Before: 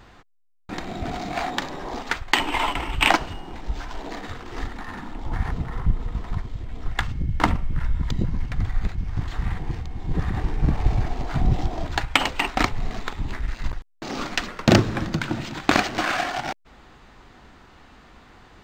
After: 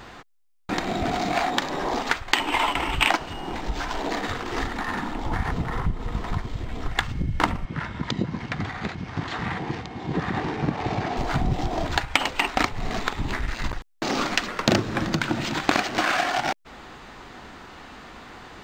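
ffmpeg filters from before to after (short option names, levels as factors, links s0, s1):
-filter_complex "[0:a]asettb=1/sr,asplit=3[s0][s1][s2];[s0]atrim=end=7.654[s3];[s1]atrim=start=7.65:end=11.17,asetpts=PTS-STARTPTS,afade=t=in:d=0.004:c=qsin,afade=t=out:st=3.516:d=0.004:c=qsin,highpass=150,lowpass=5600[s4];[s2]atrim=start=11.166[s5];[s3][s4]acrossfade=d=0.004:c1=hsin:c2=qsin[s6];[s6][s5]acrossfade=d=0.004:c1=qsin:c2=hsin,lowshelf=f=120:g=-9.5,acompressor=threshold=0.0282:ratio=2.5,volume=2.66"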